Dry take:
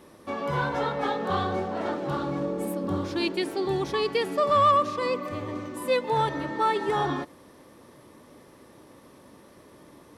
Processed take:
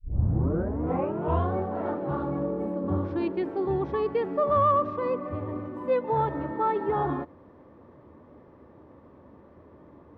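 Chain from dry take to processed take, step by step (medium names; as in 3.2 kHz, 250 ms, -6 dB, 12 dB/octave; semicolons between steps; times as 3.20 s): tape start-up on the opening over 1.53 s; low-pass 1.2 kHz 12 dB/octave; peaking EQ 80 Hz +10.5 dB 0.44 oct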